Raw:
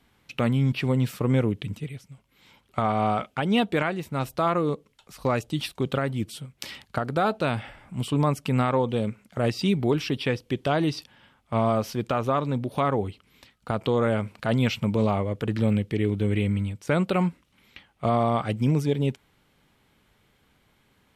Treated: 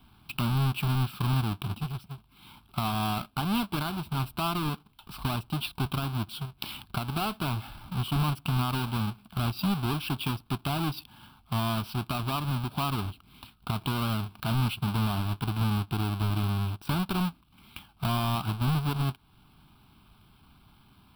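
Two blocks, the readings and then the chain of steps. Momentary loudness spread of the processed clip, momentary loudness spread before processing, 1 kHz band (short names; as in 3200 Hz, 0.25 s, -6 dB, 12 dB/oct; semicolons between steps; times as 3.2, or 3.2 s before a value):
9 LU, 9 LU, -4.5 dB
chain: half-waves squared off; compressor 2:1, threshold -35 dBFS, peak gain reduction 11 dB; fixed phaser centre 1900 Hz, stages 6; gain +3 dB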